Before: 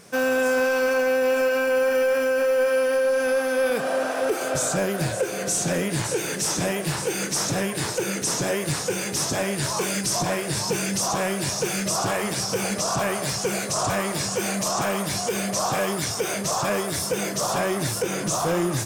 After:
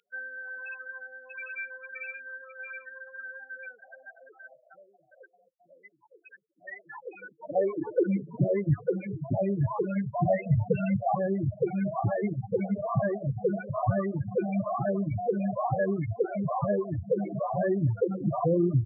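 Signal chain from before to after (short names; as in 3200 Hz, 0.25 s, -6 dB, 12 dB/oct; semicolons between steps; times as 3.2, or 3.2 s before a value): 10.28–11.15 comb 1.5 ms, depth 87%; loudest bins only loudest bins 8; reverb removal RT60 1.1 s; high-pass sweep 2700 Hz -> 100 Hz, 6.5–8.61; downsampling 8000 Hz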